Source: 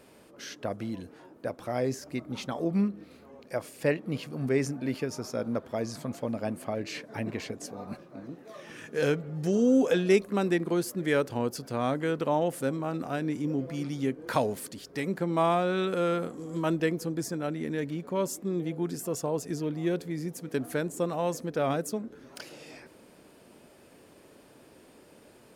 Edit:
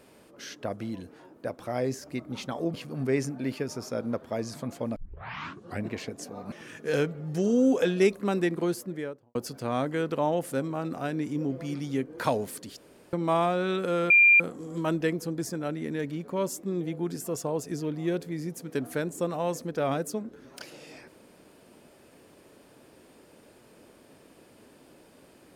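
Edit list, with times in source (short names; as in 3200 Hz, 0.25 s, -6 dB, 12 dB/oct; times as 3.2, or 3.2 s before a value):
2.74–4.16 cut
6.38 tape start 0.90 s
7.94–8.61 cut
10.71–11.44 studio fade out
14.86–15.22 room tone
16.19 add tone 2390 Hz -14 dBFS 0.30 s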